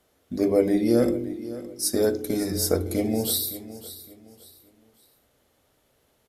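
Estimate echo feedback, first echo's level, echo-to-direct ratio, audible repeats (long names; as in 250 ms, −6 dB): 32%, −15.5 dB, −15.0 dB, 2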